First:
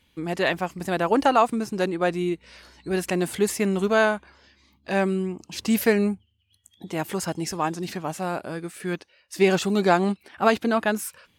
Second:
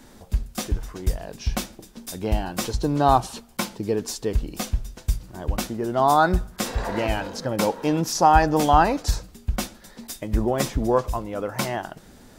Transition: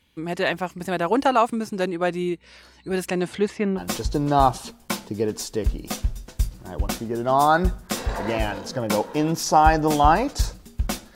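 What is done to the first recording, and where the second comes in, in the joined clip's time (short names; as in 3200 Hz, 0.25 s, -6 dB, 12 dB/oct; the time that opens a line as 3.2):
first
3.07–3.81 LPF 10000 Hz -> 1600 Hz
3.78 switch to second from 2.47 s, crossfade 0.06 s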